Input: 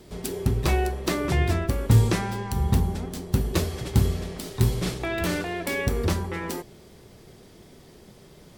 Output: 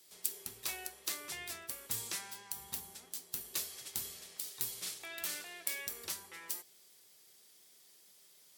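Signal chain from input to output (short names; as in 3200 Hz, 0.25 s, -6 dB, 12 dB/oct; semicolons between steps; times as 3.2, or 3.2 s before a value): differentiator; gain -2.5 dB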